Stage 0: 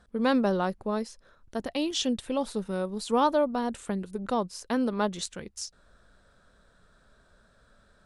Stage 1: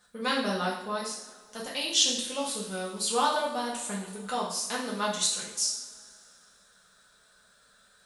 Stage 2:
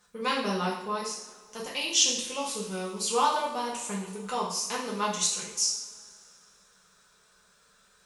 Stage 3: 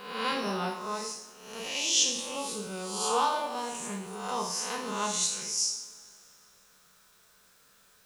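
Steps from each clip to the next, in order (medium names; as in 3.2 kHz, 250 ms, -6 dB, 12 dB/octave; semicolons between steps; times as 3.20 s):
tilt EQ +4 dB/octave; two-slope reverb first 0.6 s, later 2.5 s, from -19 dB, DRR -5.5 dB; trim -6.5 dB
rippled EQ curve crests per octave 0.77, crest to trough 7 dB
reverse spectral sustain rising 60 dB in 0.83 s; word length cut 10-bit, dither triangular; trim -4.5 dB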